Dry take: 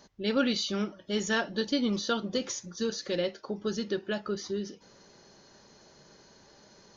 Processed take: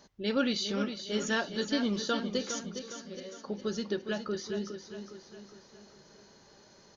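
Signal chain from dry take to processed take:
0:02.79–0:03.38: tuned comb filter 190 Hz, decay 0.6 s, harmonics all, mix 90%
on a send: repeating echo 410 ms, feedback 47%, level −9 dB
on the sum: level −2 dB

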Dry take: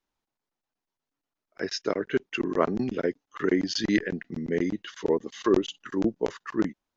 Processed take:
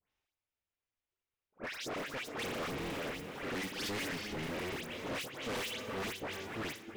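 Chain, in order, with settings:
sub-harmonics by changed cycles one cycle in 3, inverted
harmonic and percussive parts rebalanced percussive −9 dB
reverb whose tail is shaped and stops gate 480 ms rising, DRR 10 dB
output level in coarse steps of 9 dB
parametric band 2,500 Hz +9.5 dB 1.2 octaves
notch filter 4,300 Hz, Q 26
all-pass dispersion highs, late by 112 ms, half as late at 2,400 Hz
hard clipping −36 dBFS, distortion −4 dB

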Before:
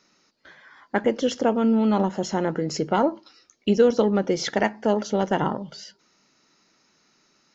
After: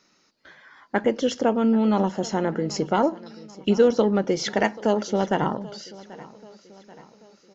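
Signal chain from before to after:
0:04.61–0:05.05: high-shelf EQ 4,400 Hz +7 dB
on a send: repeating echo 785 ms, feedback 51%, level −20 dB

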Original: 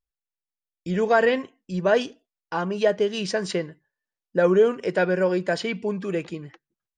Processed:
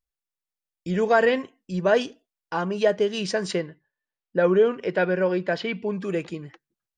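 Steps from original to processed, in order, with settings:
0:03.61–0:05.93: Chebyshev low-pass filter 3,500 Hz, order 2

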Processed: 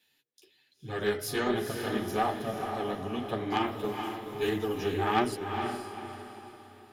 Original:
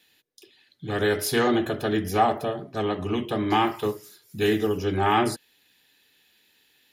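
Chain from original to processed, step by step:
multi-voice chorus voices 2, 1.2 Hz, delay 11 ms, depth 3.7 ms
harmonic generator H 2 −28 dB, 3 −14 dB, 5 −31 dB, 6 −38 dB, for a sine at −10.5 dBFS
on a send: feedback delay with all-pass diffusion 463 ms, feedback 40%, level −5.5 dB
0:04.48–0:04.94: on the sum: multiband upward and downward compressor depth 100%

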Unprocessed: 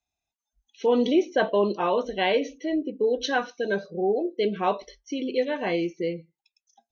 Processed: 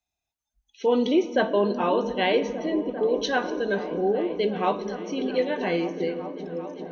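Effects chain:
echo whose low-pass opens from repeat to repeat 394 ms, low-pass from 200 Hz, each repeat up 1 octave, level −6 dB
convolution reverb RT60 2.6 s, pre-delay 3 ms, DRR 13.5 dB

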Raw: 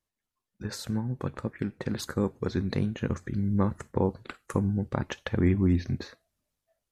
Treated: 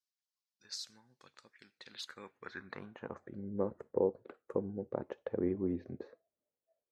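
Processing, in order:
band-pass filter sweep 5,000 Hz → 480 Hz, 0:01.68–0:03.48

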